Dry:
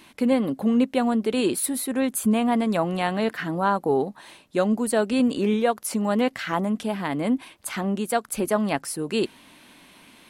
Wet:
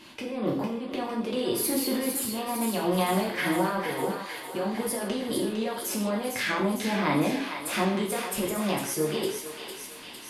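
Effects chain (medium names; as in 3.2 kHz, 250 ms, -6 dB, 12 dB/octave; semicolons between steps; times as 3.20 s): low-pass 8.4 kHz 12 dB/octave; formant shift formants +2 st; compressor with a negative ratio -27 dBFS, ratio -1; on a send: thinning echo 455 ms, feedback 70%, high-pass 970 Hz, level -6 dB; on the sum: gated-style reverb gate 190 ms falling, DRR -2.5 dB; trim -5 dB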